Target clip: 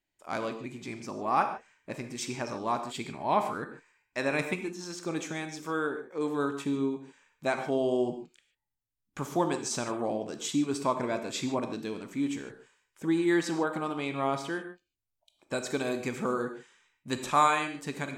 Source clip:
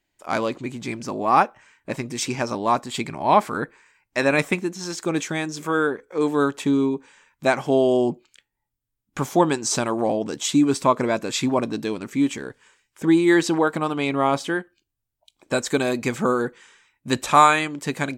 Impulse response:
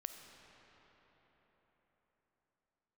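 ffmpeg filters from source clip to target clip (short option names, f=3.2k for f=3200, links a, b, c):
-filter_complex "[1:a]atrim=start_sample=2205,afade=t=out:st=0.35:d=0.01,atrim=end_sample=15876,asetrate=83790,aresample=44100[a];[0:a][a]afir=irnorm=-1:irlink=0"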